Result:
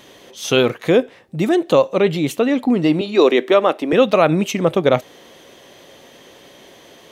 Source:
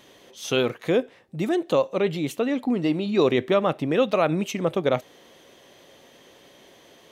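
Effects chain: 3.01–3.93 HPF 270 Hz 24 dB/oct; gain +7.5 dB

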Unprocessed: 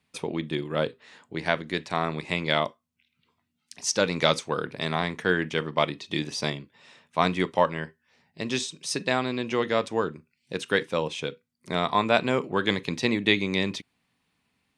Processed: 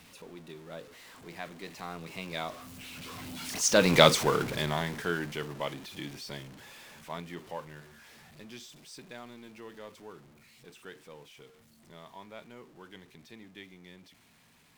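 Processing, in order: zero-crossing step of -28.5 dBFS; Doppler pass-by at 4.02, 21 m/s, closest 5.9 m; gain +2.5 dB

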